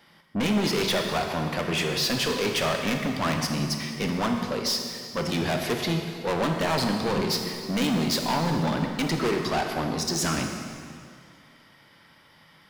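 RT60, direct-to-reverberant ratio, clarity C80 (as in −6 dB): 2.2 s, 3.0 dB, 5.0 dB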